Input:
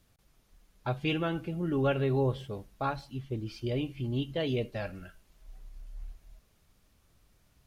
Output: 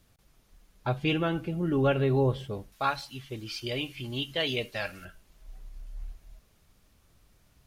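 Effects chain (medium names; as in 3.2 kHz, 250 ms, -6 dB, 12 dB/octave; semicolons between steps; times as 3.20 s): 2.72–5.05 s: tilt shelf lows -8.5 dB, about 810 Hz; trim +3 dB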